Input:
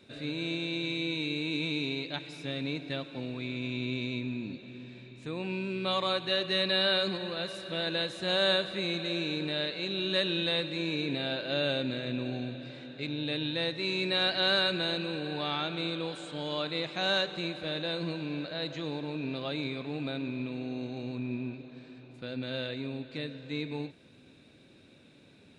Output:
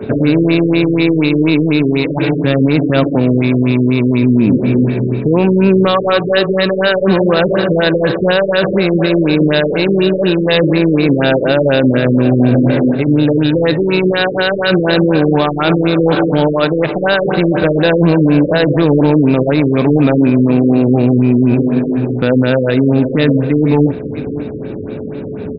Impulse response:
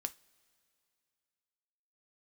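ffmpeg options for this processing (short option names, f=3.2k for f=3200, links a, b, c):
-filter_complex "[0:a]highshelf=f=7.1k:g=11.5,areverse,acompressor=threshold=-36dB:ratio=16,areverse,aeval=exprs='val(0)+0.00112*sin(2*PI*430*n/s)':c=same,adynamicsmooth=sensitivity=6.5:basefreq=1.1k,asplit=2[a][b];[b]aecho=0:1:555:0.112[c];[a][c]amix=inputs=2:normalize=0,alimiter=level_in=36dB:limit=-1dB:release=50:level=0:latency=1,afftfilt=real='re*lt(b*sr/1024,510*pow(5300/510,0.5+0.5*sin(2*PI*4.1*pts/sr)))':imag='im*lt(b*sr/1024,510*pow(5300/510,0.5+0.5*sin(2*PI*4.1*pts/sr)))':win_size=1024:overlap=0.75,volume=-1.5dB"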